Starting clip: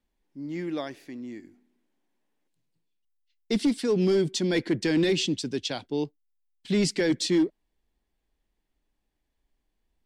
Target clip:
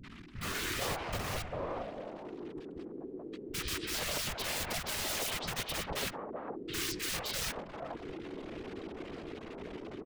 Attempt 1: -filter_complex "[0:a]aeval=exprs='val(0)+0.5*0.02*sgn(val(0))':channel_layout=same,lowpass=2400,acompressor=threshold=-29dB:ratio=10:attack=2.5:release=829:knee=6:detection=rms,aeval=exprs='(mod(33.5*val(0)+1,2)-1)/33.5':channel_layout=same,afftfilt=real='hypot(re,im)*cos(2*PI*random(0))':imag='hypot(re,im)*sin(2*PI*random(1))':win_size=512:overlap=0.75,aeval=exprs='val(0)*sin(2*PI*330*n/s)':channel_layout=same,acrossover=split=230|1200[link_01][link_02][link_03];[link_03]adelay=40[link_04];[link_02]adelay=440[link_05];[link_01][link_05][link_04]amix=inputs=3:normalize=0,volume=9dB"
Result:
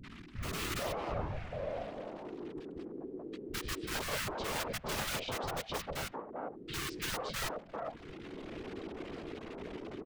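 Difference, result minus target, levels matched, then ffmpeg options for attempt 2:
downward compressor: peak gain reduction +11 dB
-filter_complex "[0:a]aeval=exprs='val(0)+0.5*0.02*sgn(val(0))':channel_layout=same,lowpass=2400,aeval=exprs='(mod(33.5*val(0)+1,2)-1)/33.5':channel_layout=same,afftfilt=real='hypot(re,im)*cos(2*PI*random(0))':imag='hypot(re,im)*sin(2*PI*random(1))':win_size=512:overlap=0.75,aeval=exprs='val(0)*sin(2*PI*330*n/s)':channel_layout=same,acrossover=split=230|1200[link_01][link_02][link_03];[link_03]adelay=40[link_04];[link_02]adelay=440[link_05];[link_01][link_05][link_04]amix=inputs=3:normalize=0,volume=9dB"

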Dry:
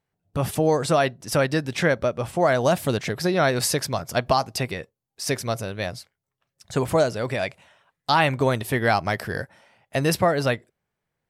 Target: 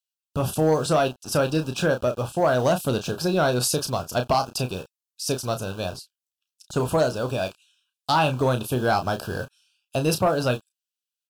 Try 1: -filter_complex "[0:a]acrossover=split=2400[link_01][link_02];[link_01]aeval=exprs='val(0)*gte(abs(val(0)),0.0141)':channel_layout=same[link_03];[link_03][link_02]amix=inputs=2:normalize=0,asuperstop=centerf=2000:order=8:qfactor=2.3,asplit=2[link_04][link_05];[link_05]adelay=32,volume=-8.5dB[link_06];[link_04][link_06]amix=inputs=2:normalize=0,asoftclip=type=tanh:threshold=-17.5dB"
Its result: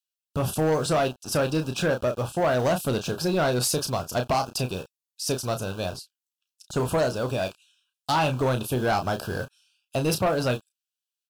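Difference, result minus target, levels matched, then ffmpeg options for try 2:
soft clipping: distortion +8 dB
-filter_complex "[0:a]acrossover=split=2400[link_01][link_02];[link_01]aeval=exprs='val(0)*gte(abs(val(0)),0.0141)':channel_layout=same[link_03];[link_03][link_02]amix=inputs=2:normalize=0,asuperstop=centerf=2000:order=8:qfactor=2.3,asplit=2[link_04][link_05];[link_05]adelay=32,volume=-8.5dB[link_06];[link_04][link_06]amix=inputs=2:normalize=0,asoftclip=type=tanh:threshold=-11dB"

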